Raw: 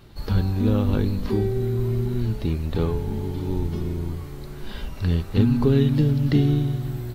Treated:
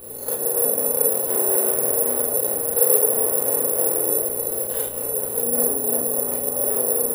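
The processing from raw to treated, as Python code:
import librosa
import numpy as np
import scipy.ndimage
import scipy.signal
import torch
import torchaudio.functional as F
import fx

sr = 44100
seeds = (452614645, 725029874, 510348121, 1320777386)

p1 = fx.tilt_shelf(x, sr, db=5.0, hz=890.0)
p2 = fx.over_compress(p1, sr, threshold_db=-19.0, ratio=-0.5)
p3 = fx.tube_stage(p2, sr, drive_db=32.0, bias=0.55)
p4 = fx.highpass_res(p3, sr, hz=480.0, q=6.0)
p5 = fx.add_hum(p4, sr, base_hz=60, snr_db=20)
p6 = p5 + fx.echo_filtered(p5, sr, ms=450, feedback_pct=65, hz=2000.0, wet_db=-13.5, dry=0)
p7 = fx.rev_schroeder(p6, sr, rt60_s=0.38, comb_ms=26, drr_db=-4.5)
y = (np.kron(scipy.signal.resample_poly(p7, 1, 4), np.eye(4)[0]) * 4)[:len(p7)]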